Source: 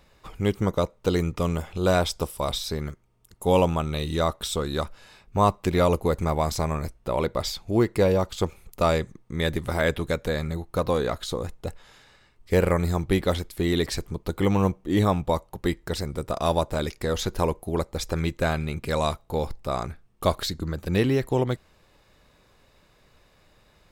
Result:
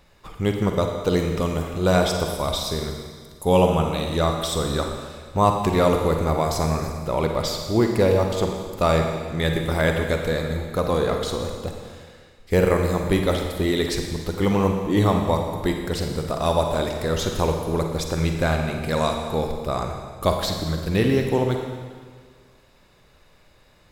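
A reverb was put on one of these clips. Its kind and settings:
four-comb reverb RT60 1.7 s, DRR 3 dB
level +1.5 dB

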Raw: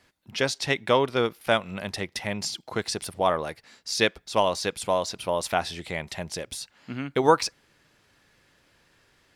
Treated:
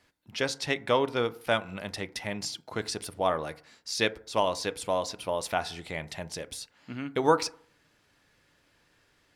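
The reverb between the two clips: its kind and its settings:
feedback delay network reverb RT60 0.53 s, low-frequency decay 0.95×, high-frequency decay 0.3×, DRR 13 dB
level −4 dB

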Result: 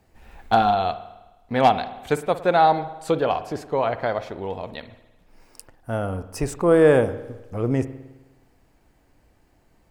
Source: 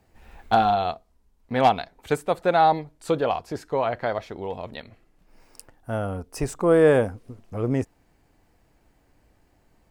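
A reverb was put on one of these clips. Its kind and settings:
spring reverb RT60 1.1 s, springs 52 ms, chirp 25 ms, DRR 13 dB
level +1.5 dB

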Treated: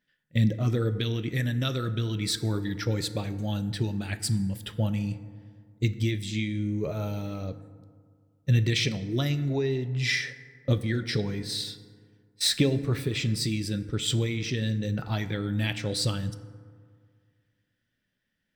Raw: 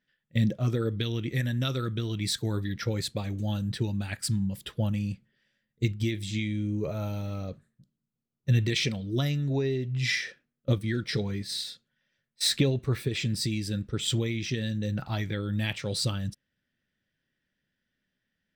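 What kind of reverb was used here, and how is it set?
feedback delay network reverb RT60 2 s, low-frequency decay 1.05×, high-frequency decay 0.4×, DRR 11.5 dB
level +1 dB

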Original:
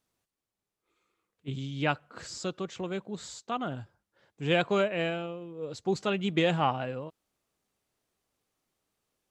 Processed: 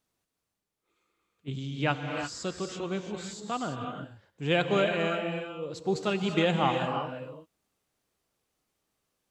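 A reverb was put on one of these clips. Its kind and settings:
reverb whose tail is shaped and stops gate 370 ms rising, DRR 4 dB

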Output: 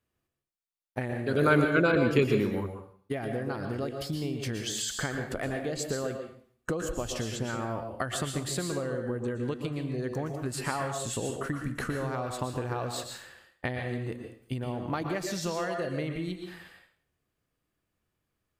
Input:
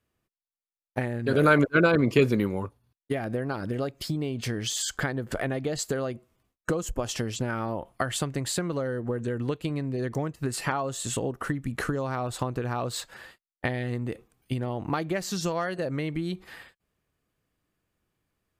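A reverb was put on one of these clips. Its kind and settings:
dense smooth reverb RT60 0.51 s, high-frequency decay 1×, pre-delay 105 ms, DRR 4 dB
level −4 dB

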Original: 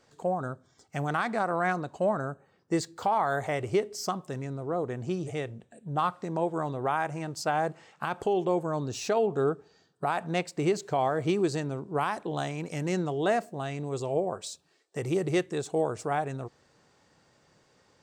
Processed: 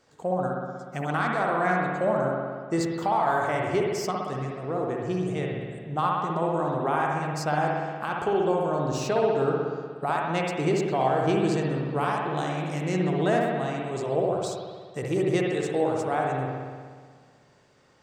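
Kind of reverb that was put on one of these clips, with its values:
spring reverb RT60 1.7 s, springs 60 ms, chirp 75 ms, DRR −1.5 dB

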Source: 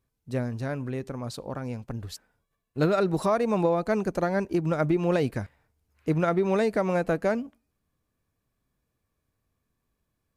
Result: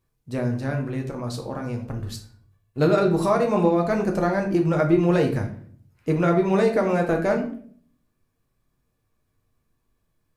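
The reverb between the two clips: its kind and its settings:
rectangular room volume 59 cubic metres, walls mixed, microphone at 0.57 metres
level +1.5 dB

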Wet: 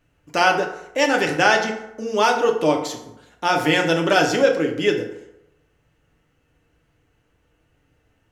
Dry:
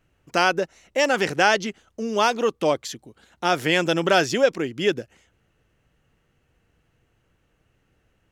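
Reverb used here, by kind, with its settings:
feedback delay network reverb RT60 0.85 s, low-frequency decay 0.8×, high-frequency decay 0.55×, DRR 1.5 dB

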